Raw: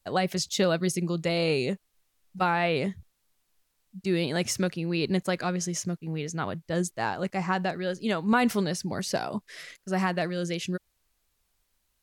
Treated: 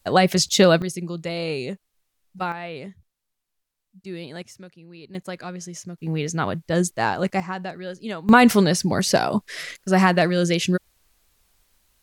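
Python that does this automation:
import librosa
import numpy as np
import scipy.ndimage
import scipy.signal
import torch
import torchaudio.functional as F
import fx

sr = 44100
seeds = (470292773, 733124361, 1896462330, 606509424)

y = fx.gain(x, sr, db=fx.steps((0.0, 9.5), (0.82, -1.5), (2.52, -8.0), (4.42, -16.0), (5.15, -5.0), (5.98, 7.0), (7.4, -3.0), (8.29, 10.0)))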